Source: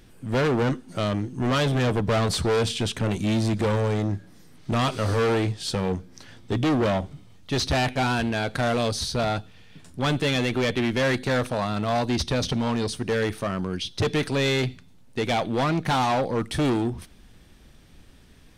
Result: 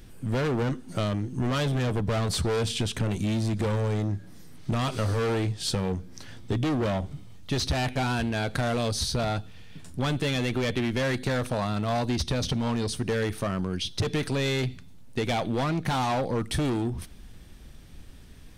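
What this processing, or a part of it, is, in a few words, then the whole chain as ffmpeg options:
ASMR close-microphone chain: -af "lowshelf=f=140:g=6.5,acompressor=threshold=0.0631:ratio=6,highshelf=f=7900:g=5"

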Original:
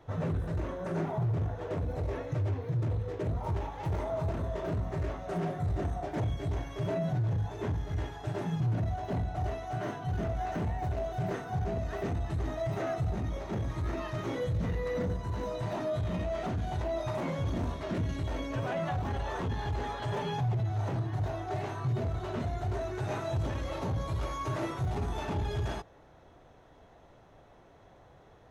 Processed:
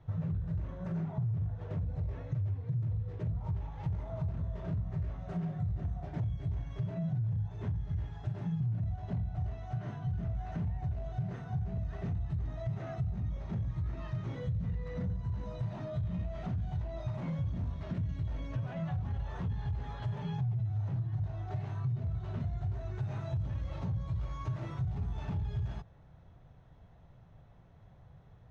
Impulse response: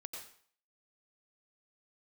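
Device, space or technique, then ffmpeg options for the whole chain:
jukebox: -af "lowpass=5500,lowshelf=f=220:t=q:w=1.5:g=11.5,acompressor=threshold=0.0562:ratio=3,volume=0.398"

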